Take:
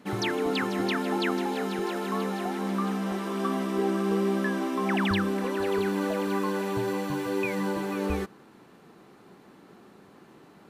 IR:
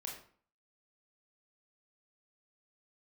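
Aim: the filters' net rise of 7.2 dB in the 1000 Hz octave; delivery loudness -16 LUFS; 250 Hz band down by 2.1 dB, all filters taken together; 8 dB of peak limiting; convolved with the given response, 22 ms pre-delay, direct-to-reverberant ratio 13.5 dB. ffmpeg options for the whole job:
-filter_complex "[0:a]equalizer=f=250:t=o:g=-3.5,equalizer=f=1k:t=o:g=9,alimiter=limit=-21dB:level=0:latency=1,asplit=2[a][b];[1:a]atrim=start_sample=2205,adelay=22[c];[b][c]afir=irnorm=-1:irlink=0,volume=-11.5dB[d];[a][d]amix=inputs=2:normalize=0,volume=13.5dB"

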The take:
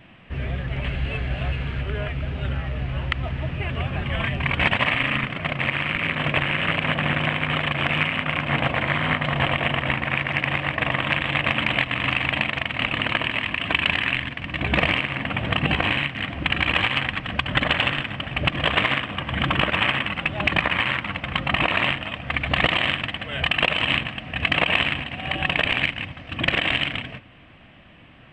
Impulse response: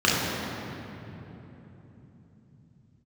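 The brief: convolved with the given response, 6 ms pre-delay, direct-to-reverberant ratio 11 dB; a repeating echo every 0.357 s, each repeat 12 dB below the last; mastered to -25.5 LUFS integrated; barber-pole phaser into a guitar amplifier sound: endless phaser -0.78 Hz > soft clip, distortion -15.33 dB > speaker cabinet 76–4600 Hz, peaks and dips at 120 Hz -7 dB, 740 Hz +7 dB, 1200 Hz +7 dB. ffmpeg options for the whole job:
-filter_complex "[0:a]aecho=1:1:357|714|1071:0.251|0.0628|0.0157,asplit=2[a][b];[1:a]atrim=start_sample=2205,adelay=6[c];[b][c]afir=irnorm=-1:irlink=0,volume=-30.5dB[d];[a][d]amix=inputs=2:normalize=0,asplit=2[e][f];[f]afreqshift=-0.78[g];[e][g]amix=inputs=2:normalize=1,asoftclip=threshold=-15.5dB,highpass=76,equalizer=f=120:t=q:w=4:g=-7,equalizer=f=740:t=q:w=4:g=7,equalizer=f=1.2k:t=q:w=4:g=7,lowpass=f=4.6k:w=0.5412,lowpass=f=4.6k:w=1.3066"

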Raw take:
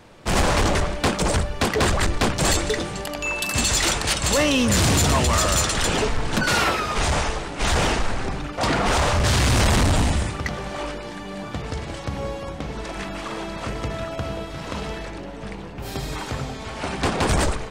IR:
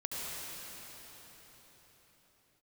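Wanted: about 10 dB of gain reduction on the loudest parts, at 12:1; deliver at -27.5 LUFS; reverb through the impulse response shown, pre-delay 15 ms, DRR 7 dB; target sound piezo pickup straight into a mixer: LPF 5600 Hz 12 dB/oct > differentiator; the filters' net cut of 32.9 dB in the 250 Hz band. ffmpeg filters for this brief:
-filter_complex "[0:a]equalizer=f=250:t=o:g=-5.5,acompressor=threshold=-27dB:ratio=12,asplit=2[a][b];[1:a]atrim=start_sample=2205,adelay=15[c];[b][c]afir=irnorm=-1:irlink=0,volume=-11dB[d];[a][d]amix=inputs=2:normalize=0,lowpass=5.6k,aderivative,volume=13.5dB"

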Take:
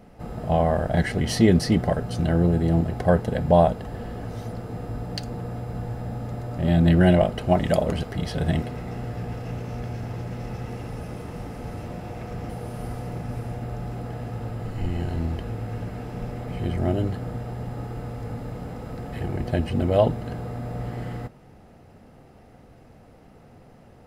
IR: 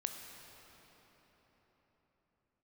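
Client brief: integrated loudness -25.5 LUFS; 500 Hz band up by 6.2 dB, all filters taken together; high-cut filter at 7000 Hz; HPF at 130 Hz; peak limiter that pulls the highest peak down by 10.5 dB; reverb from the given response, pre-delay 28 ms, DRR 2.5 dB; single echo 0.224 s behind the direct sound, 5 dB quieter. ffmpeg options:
-filter_complex "[0:a]highpass=130,lowpass=7k,equalizer=f=500:t=o:g=8,alimiter=limit=-10dB:level=0:latency=1,aecho=1:1:224:0.562,asplit=2[a][b];[1:a]atrim=start_sample=2205,adelay=28[c];[b][c]afir=irnorm=-1:irlink=0,volume=-2.5dB[d];[a][d]amix=inputs=2:normalize=0,volume=-2.5dB"

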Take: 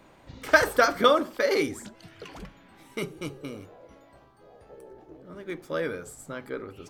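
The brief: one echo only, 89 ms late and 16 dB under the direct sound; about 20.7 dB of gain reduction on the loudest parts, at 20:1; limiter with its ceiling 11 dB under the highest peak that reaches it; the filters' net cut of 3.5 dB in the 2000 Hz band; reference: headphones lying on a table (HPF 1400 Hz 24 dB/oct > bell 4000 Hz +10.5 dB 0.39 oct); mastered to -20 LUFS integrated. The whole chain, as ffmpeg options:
-af "equalizer=f=2k:t=o:g=-3.5,acompressor=threshold=-35dB:ratio=20,alimiter=level_in=9.5dB:limit=-24dB:level=0:latency=1,volume=-9.5dB,highpass=f=1.4k:w=0.5412,highpass=f=1.4k:w=1.3066,equalizer=f=4k:t=o:w=0.39:g=10.5,aecho=1:1:89:0.158,volume=29.5dB"

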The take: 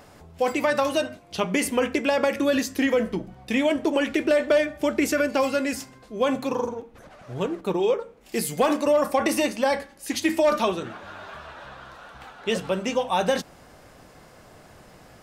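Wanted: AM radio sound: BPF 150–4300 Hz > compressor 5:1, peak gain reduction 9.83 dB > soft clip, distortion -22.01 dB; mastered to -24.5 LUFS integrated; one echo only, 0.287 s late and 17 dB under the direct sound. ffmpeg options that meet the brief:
-af "highpass=150,lowpass=4.3k,aecho=1:1:287:0.141,acompressor=threshold=-26dB:ratio=5,asoftclip=threshold=-19dB,volume=7.5dB"

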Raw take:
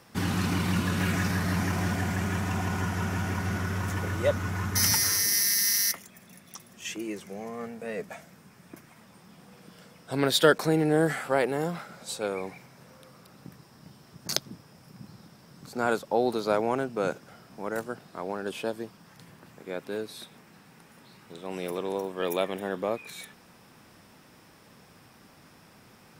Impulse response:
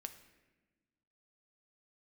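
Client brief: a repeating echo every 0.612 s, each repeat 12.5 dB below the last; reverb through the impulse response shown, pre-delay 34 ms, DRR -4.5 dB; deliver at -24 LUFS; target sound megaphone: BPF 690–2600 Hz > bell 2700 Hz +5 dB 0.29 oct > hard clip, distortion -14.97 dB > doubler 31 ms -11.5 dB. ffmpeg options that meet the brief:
-filter_complex "[0:a]aecho=1:1:612|1224|1836:0.237|0.0569|0.0137,asplit=2[a][b];[1:a]atrim=start_sample=2205,adelay=34[c];[b][c]afir=irnorm=-1:irlink=0,volume=8.5dB[d];[a][d]amix=inputs=2:normalize=0,highpass=690,lowpass=2.6k,equalizer=f=2.7k:t=o:w=0.29:g=5,asoftclip=type=hard:threshold=-17dB,asplit=2[e][f];[f]adelay=31,volume=-11.5dB[g];[e][g]amix=inputs=2:normalize=0,volume=5.5dB"

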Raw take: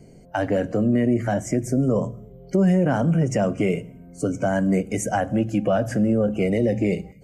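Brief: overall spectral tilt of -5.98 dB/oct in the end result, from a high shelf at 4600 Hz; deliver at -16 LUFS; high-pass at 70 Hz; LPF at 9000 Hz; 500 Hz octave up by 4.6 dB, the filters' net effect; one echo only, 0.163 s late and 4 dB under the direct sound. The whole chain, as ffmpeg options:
-af "highpass=70,lowpass=9k,equalizer=f=500:t=o:g=5.5,highshelf=f=4.6k:g=7.5,aecho=1:1:163:0.631,volume=3dB"

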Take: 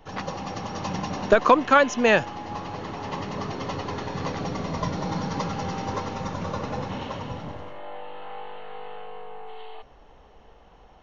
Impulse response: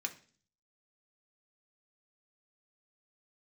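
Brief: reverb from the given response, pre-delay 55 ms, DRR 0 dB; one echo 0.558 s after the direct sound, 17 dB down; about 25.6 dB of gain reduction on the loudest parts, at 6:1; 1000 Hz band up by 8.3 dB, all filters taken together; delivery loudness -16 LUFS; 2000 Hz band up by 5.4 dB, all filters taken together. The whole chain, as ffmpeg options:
-filter_complex "[0:a]equalizer=f=1k:t=o:g=9,equalizer=f=2k:t=o:g=3.5,acompressor=threshold=-33dB:ratio=6,aecho=1:1:558:0.141,asplit=2[a][b];[1:a]atrim=start_sample=2205,adelay=55[c];[b][c]afir=irnorm=-1:irlink=0,volume=-0.5dB[d];[a][d]amix=inputs=2:normalize=0,volume=18dB"

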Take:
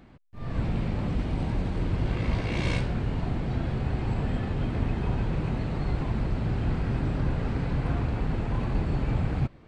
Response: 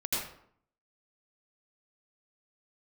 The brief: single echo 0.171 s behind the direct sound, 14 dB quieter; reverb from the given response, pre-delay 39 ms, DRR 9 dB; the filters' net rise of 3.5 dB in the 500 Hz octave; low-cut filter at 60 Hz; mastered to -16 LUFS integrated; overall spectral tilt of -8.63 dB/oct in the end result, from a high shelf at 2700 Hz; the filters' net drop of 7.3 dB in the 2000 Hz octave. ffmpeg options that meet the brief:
-filter_complex "[0:a]highpass=60,equalizer=f=500:t=o:g=5,equalizer=f=2k:t=o:g=-6.5,highshelf=f=2.7k:g=-7.5,aecho=1:1:171:0.2,asplit=2[a][b];[1:a]atrim=start_sample=2205,adelay=39[c];[b][c]afir=irnorm=-1:irlink=0,volume=-15.5dB[d];[a][d]amix=inputs=2:normalize=0,volume=13dB"

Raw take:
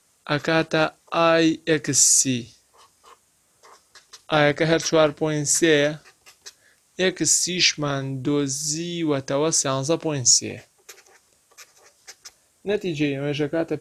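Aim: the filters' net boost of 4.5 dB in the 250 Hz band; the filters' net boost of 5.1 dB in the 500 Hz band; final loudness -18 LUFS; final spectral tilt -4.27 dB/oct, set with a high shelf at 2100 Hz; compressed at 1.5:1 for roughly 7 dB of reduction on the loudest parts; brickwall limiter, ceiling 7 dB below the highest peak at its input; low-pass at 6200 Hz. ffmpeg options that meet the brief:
-af "lowpass=6.2k,equalizer=f=250:t=o:g=4,equalizer=f=500:t=o:g=5.5,highshelf=f=2.1k:g=-3.5,acompressor=threshold=-29dB:ratio=1.5,volume=8dB,alimiter=limit=-6.5dB:level=0:latency=1"

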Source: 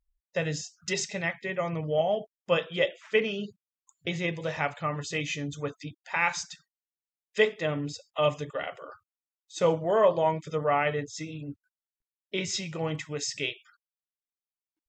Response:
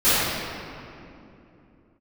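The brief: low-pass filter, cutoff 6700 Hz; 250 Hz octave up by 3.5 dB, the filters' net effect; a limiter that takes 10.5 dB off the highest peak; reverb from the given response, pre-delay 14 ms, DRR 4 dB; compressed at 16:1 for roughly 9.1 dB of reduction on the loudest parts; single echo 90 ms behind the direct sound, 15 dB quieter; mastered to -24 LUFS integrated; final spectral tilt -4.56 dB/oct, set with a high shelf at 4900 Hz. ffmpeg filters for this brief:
-filter_complex "[0:a]lowpass=6.7k,equalizer=f=250:t=o:g=5.5,highshelf=f=4.9k:g=5,acompressor=threshold=-25dB:ratio=16,alimiter=limit=-24dB:level=0:latency=1,aecho=1:1:90:0.178,asplit=2[a][b];[1:a]atrim=start_sample=2205,adelay=14[c];[b][c]afir=irnorm=-1:irlink=0,volume=-26dB[d];[a][d]amix=inputs=2:normalize=0,volume=9.5dB"

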